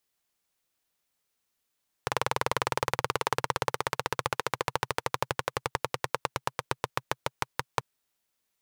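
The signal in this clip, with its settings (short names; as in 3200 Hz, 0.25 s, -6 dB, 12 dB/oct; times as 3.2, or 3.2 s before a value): single-cylinder engine model, changing speed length 5.74 s, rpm 2500, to 600, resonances 130/490/910 Hz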